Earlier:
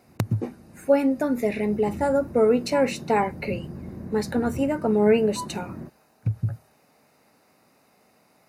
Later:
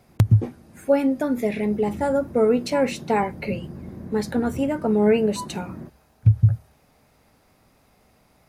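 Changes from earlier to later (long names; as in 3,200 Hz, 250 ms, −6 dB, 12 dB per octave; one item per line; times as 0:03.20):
speech: remove high-pass filter 190 Hz 12 dB per octave
master: remove Butterworth band-reject 3,300 Hz, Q 7.5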